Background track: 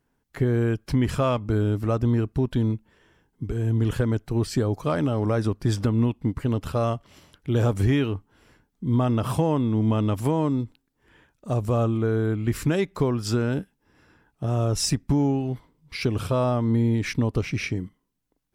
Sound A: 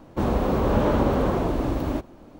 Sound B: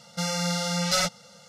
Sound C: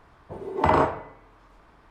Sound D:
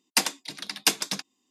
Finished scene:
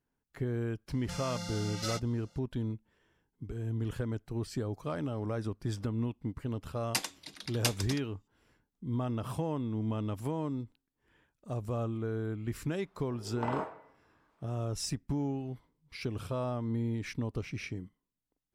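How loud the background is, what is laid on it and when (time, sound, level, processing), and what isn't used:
background track −11.5 dB
0:00.91: mix in B −13.5 dB
0:06.78: mix in D −9.5 dB
0:12.79: mix in C −15 dB + high-pass filter 180 Hz
not used: A

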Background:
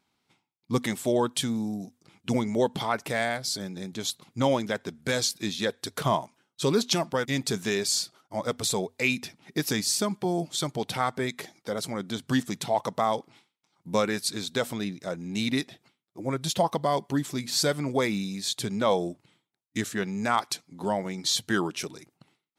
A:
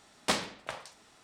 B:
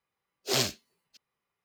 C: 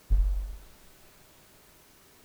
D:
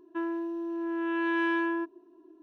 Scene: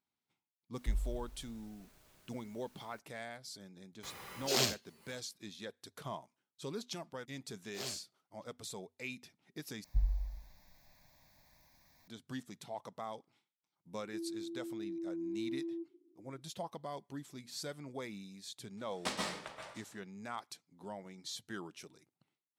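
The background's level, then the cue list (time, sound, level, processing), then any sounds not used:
background −18 dB
0:00.76: mix in C −9.5 dB + repeating echo 262 ms, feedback 33%, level −11.5 dB
0:04.03: mix in B −4.5 dB + background raised ahead of every attack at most 31 dB per second
0:07.27: mix in B −16.5 dB
0:09.84: overwrite with C −6.5 dB + phaser with its sweep stopped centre 2,000 Hz, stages 8
0:13.98: mix in D −7.5 dB + transistor ladder low-pass 370 Hz, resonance 55%
0:18.77: mix in A −9.5 dB + dense smooth reverb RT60 0.57 s, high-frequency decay 0.8×, pre-delay 115 ms, DRR −1 dB

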